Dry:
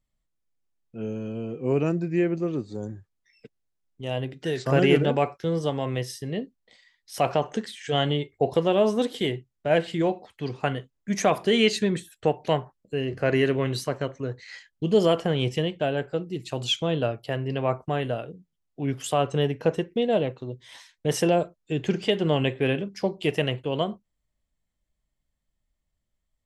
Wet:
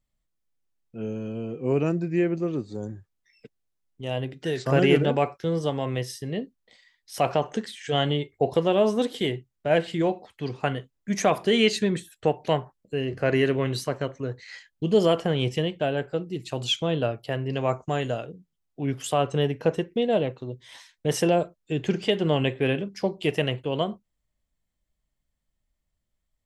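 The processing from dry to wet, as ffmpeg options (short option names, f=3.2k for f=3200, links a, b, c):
-filter_complex "[0:a]asettb=1/sr,asplit=3[a][b][c];[a]atrim=end=17.534[d];[b]atrim=start=17.53:end=18.26,asetpts=PTS-STARTPTS,afade=t=in:d=0.004:c=qsin,afade=t=out:st=0.726:d=0.004:c=qsin,lowpass=f=6.8k:t=q:w=13[e];[c]atrim=start=18.256[f];[d][e]acrossfade=d=0.004:c1=hsin:c2=qsin[g];[g][f]acrossfade=d=0.004:c1=qsin:c2=hsin"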